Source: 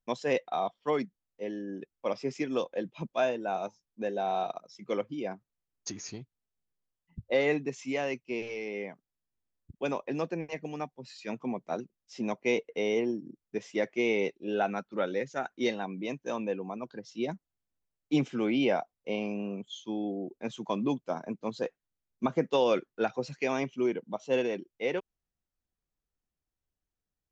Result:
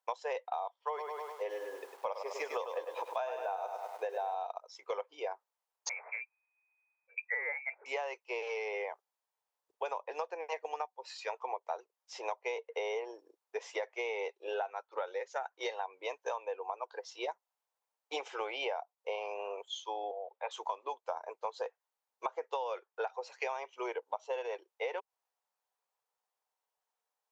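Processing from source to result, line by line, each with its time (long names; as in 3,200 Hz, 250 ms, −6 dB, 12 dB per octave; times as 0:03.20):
0:00.79–0:04.35: feedback echo at a low word length 101 ms, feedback 55%, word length 9 bits, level −7.5 dB
0:05.89–0:07.86: voice inversion scrambler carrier 2,500 Hz
0:20.11–0:20.51: Chebyshev band-pass filter 510–3,700 Hz, order 4
whole clip: elliptic high-pass filter 450 Hz, stop band 50 dB; parametric band 900 Hz +12.5 dB 0.72 octaves; downward compressor 12 to 1, threshold −36 dBFS; level +2.5 dB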